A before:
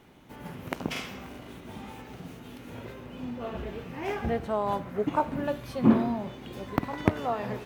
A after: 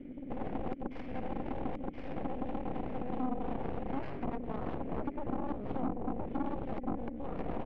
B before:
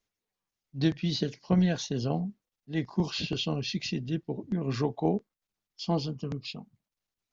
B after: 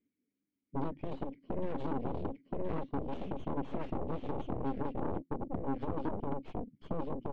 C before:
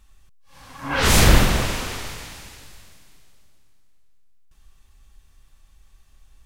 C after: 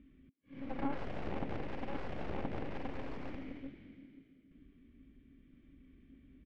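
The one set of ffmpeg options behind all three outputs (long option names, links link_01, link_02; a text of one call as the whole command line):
ffmpeg -i in.wav -filter_complex "[0:a]asplit=3[link_01][link_02][link_03];[link_01]bandpass=frequency=270:width_type=q:width=8,volume=0dB[link_04];[link_02]bandpass=frequency=2290:width_type=q:width=8,volume=-6dB[link_05];[link_03]bandpass=frequency=3010:width_type=q:width=8,volume=-9dB[link_06];[link_04][link_05][link_06]amix=inputs=3:normalize=0,aecho=1:1:1023:0.596,acompressor=threshold=-50dB:ratio=4,alimiter=level_in=21dB:limit=-24dB:level=0:latency=1:release=189,volume=-21dB,highshelf=frequency=4300:gain=-5.5,aeval=exprs='0.00841*(cos(1*acos(clip(val(0)/0.00841,-1,1)))-cos(1*PI/2))+0.00376*(cos(7*acos(clip(val(0)/0.00841,-1,1)))-cos(7*PI/2))+0.00211*(cos(8*acos(clip(val(0)/0.00841,-1,1)))-cos(8*PI/2))':channel_layout=same,adynamicsmooth=sensitivity=3.5:basefreq=900,volume=15.5dB" out.wav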